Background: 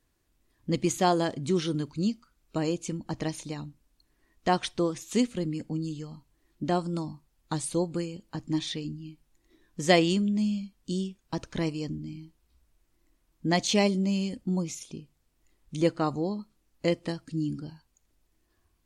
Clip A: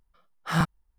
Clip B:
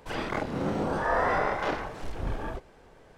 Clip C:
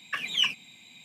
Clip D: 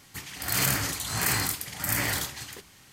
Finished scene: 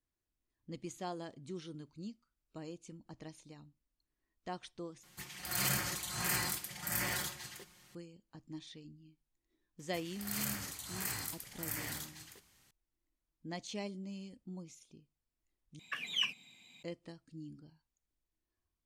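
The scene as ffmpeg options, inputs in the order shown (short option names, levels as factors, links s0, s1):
-filter_complex "[4:a]asplit=2[s0][s1];[0:a]volume=0.126[s2];[s0]aecho=1:1:5.6:0.63[s3];[s1]highshelf=f=5600:g=4.5[s4];[s2]asplit=3[s5][s6][s7];[s5]atrim=end=5.034[s8];[s3]atrim=end=2.92,asetpts=PTS-STARTPTS,volume=0.335[s9];[s6]atrim=start=7.946:end=15.794[s10];[3:a]atrim=end=1.04,asetpts=PTS-STARTPTS,volume=0.376[s11];[s7]atrim=start=16.826[s12];[s4]atrim=end=2.92,asetpts=PTS-STARTPTS,volume=0.168,afade=t=in:d=0.004:c=hsin,afade=t=out:st=2.916:d=0.004:c=hsin,adelay=9790[s13];[s8][s9]acrossfade=d=0.004:c1=hsin:c2=hsin[s14];[s14][s10]acrossfade=d=0.004:c1=hsin:c2=hsin[s15];[s15][s11]acrossfade=d=0.004:c1=hsin:c2=hsin[s16];[s16][s12]acrossfade=d=0.004:c1=hsin:c2=hsin[s17];[s17][s13]amix=inputs=2:normalize=0"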